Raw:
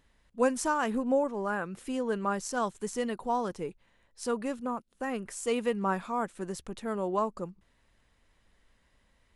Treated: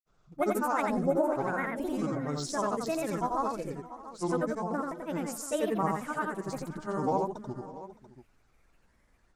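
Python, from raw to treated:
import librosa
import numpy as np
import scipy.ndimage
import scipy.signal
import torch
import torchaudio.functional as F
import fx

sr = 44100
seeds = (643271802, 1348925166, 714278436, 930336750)

y = fx.band_shelf(x, sr, hz=3200.0, db=-8.0, octaves=1.0)
y = fx.granulator(y, sr, seeds[0], grain_ms=100.0, per_s=20.0, spray_ms=100.0, spread_st=7)
y = fx.echo_multitap(y, sr, ms=(87, 542, 615, 687), db=(-3.0, -19.5, -20.0, -15.0))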